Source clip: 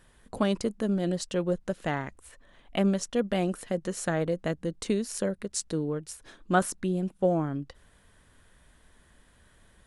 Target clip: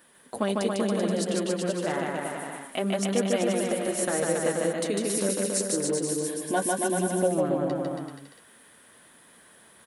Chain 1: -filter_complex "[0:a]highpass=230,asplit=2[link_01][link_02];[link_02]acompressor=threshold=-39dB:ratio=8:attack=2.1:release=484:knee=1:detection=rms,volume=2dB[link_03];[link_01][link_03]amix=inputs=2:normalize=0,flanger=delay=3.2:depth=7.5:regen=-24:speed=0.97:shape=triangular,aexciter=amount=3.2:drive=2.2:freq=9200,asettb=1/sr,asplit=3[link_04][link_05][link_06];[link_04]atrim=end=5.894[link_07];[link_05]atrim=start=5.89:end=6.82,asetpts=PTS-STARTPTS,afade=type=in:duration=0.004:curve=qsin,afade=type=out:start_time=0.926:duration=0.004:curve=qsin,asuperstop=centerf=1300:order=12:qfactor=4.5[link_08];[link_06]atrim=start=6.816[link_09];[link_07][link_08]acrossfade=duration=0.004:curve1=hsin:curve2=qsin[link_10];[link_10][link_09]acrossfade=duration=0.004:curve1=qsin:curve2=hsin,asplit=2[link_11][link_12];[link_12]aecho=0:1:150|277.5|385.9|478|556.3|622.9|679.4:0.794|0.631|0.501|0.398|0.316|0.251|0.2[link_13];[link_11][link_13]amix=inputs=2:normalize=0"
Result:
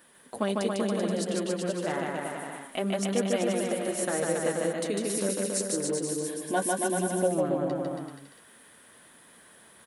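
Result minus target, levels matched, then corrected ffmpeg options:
downward compressor: peak gain reduction +8.5 dB
-filter_complex "[0:a]highpass=230,asplit=2[link_01][link_02];[link_02]acompressor=threshold=-29.5dB:ratio=8:attack=2.1:release=484:knee=1:detection=rms,volume=2dB[link_03];[link_01][link_03]amix=inputs=2:normalize=0,flanger=delay=3.2:depth=7.5:regen=-24:speed=0.97:shape=triangular,aexciter=amount=3.2:drive=2.2:freq=9200,asettb=1/sr,asplit=3[link_04][link_05][link_06];[link_04]atrim=end=5.894[link_07];[link_05]atrim=start=5.89:end=6.82,asetpts=PTS-STARTPTS,afade=type=in:duration=0.004:curve=qsin,afade=type=out:start_time=0.926:duration=0.004:curve=qsin,asuperstop=centerf=1300:order=12:qfactor=4.5[link_08];[link_06]atrim=start=6.816[link_09];[link_07][link_08]acrossfade=duration=0.004:curve1=hsin:curve2=qsin[link_10];[link_10][link_09]acrossfade=duration=0.004:curve1=qsin:curve2=hsin,asplit=2[link_11][link_12];[link_12]aecho=0:1:150|277.5|385.9|478|556.3|622.9|679.4:0.794|0.631|0.501|0.398|0.316|0.251|0.2[link_13];[link_11][link_13]amix=inputs=2:normalize=0"

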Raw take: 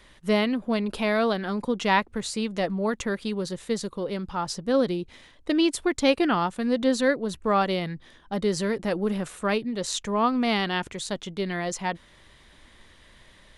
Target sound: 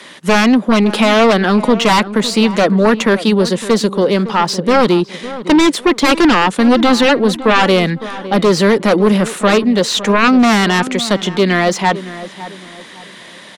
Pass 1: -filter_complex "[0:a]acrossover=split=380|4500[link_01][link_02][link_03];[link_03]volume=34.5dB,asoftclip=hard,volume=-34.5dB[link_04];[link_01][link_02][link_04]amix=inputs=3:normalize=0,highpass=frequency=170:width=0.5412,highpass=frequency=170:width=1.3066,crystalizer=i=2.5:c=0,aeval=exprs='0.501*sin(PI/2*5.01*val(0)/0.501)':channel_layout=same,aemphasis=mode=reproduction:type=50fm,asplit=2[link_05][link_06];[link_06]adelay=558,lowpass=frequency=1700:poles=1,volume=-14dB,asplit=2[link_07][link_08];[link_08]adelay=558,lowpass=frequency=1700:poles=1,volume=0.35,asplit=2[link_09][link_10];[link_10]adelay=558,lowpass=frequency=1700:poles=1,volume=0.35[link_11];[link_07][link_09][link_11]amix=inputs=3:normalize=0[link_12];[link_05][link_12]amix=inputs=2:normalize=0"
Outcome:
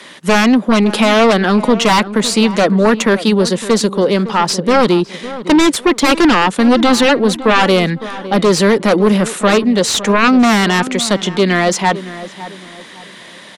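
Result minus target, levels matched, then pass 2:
gain into a clipping stage and back: distortion −7 dB
-filter_complex "[0:a]acrossover=split=380|4500[link_01][link_02][link_03];[link_03]volume=46dB,asoftclip=hard,volume=-46dB[link_04];[link_01][link_02][link_04]amix=inputs=3:normalize=0,highpass=frequency=170:width=0.5412,highpass=frequency=170:width=1.3066,crystalizer=i=2.5:c=0,aeval=exprs='0.501*sin(PI/2*5.01*val(0)/0.501)':channel_layout=same,aemphasis=mode=reproduction:type=50fm,asplit=2[link_05][link_06];[link_06]adelay=558,lowpass=frequency=1700:poles=1,volume=-14dB,asplit=2[link_07][link_08];[link_08]adelay=558,lowpass=frequency=1700:poles=1,volume=0.35,asplit=2[link_09][link_10];[link_10]adelay=558,lowpass=frequency=1700:poles=1,volume=0.35[link_11];[link_07][link_09][link_11]amix=inputs=3:normalize=0[link_12];[link_05][link_12]amix=inputs=2:normalize=0"

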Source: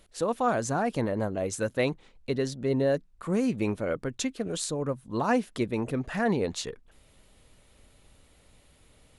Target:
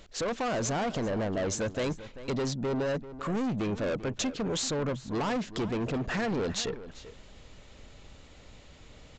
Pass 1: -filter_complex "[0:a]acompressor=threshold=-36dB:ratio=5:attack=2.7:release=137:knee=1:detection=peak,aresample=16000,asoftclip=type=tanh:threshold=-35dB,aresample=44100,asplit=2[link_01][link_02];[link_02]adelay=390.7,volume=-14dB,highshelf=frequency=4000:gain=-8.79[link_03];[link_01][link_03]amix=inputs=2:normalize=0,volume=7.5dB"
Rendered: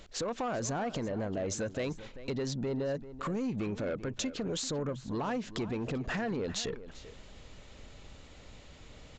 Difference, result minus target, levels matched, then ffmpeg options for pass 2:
downward compressor: peak gain reduction +9.5 dB
-filter_complex "[0:a]acompressor=threshold=-24dB:ratio=5:attack=2.7:release=137:knee=1:detection=peak,aresample=16000,asoftclip=type=tanh:threshold=-35dB,aresample=44100,asplit=2[link_01][link_02];[link_02]adelay=390.7,volume=-14dB,highshelf=frequency=4000:gain=-8.79[link_03];[link_01][link_03]amix=inputs=2:normalize=0,volume=7.5dB"

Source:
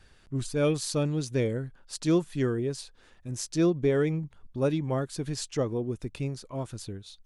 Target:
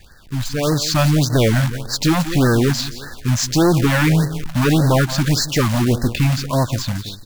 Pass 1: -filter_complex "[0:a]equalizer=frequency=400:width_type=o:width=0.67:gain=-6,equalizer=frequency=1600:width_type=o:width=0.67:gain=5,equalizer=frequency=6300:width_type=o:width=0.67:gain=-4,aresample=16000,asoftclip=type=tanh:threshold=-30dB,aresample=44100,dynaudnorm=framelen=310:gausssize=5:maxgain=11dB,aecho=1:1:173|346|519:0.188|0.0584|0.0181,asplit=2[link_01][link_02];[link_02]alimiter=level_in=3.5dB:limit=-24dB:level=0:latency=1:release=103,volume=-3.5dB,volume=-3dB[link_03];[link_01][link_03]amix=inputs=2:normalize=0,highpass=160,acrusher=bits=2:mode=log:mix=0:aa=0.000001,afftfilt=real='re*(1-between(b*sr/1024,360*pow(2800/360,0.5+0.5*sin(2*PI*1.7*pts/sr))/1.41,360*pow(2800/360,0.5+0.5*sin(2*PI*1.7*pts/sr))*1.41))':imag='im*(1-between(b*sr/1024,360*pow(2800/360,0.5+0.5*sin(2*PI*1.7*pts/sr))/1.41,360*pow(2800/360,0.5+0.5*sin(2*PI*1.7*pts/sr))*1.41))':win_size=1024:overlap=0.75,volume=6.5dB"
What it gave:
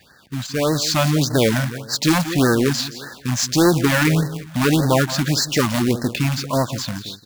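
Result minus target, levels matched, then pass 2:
125 Hz band −3.0 dB
-filter_complex "[0:a]equalizer=frequency=400:width_type=o:width=0.67:gain=-6,equalizer=frequency=1600:width_type=o:width=0.67:gain=5,equalizer=frequency=6300:width_type=o:width=0.67:gain=-4,aresample=16000,asoftclip=type=tanh:threshold=-30dB,aresample=44100,dynaudnorm=framelen=310:gausssize=5:maxgain=11dB,aecho=1:1:173|346|519:0.188|0.0584|0.0181,asplit=2[link_01][link_02];[link_02]alimiter=level_in=3.5dB:limit=-24dB:level=0:latency=1:release=103,volume=-3.5dB,volume=-3dB[link_03];[link_01][link_03]amix=inputs=2:normalize=0,acrusher=bits=2:mode=log:mix=0:aa=0.000001,afftfilt=real='re*(1-between(b*sr/1024,360*pow(2800/360,0.5+0.5*sin(2*PI*1.7*pts/sr))/1.41,360*pow(2800/360,0.5+0.5*sin(2*PI*1.7*pts/sr))*1.41))':imag='im*(1-between(b*sr/1024,360*pow(2800/360,0.5+0.5*sin(2*PI*1.7*pts/sr))/1.41,360*pow(2800/360,0.5+0.5*sin(2*PI*1.7*pts/sr))*1.41))':win_size=1024:overlap=0.75,volume=6.5dB"

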